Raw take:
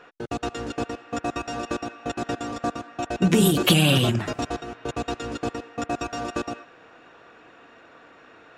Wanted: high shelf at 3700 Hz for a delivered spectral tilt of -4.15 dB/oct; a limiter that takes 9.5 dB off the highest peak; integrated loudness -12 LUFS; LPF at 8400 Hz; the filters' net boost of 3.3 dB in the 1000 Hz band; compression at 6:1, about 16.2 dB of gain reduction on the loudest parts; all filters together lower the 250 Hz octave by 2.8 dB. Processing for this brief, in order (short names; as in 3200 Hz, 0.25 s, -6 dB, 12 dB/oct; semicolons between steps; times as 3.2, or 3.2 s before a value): LPF 8400 Hz; bell 250 Hz -4.5 dB; bell 1000 Hz +5 dB; high shelf 3700 Hz +6 dB; compressor 6:1, threshold -31 dBFS; gain +27 dB; limiter -0.5 dBFS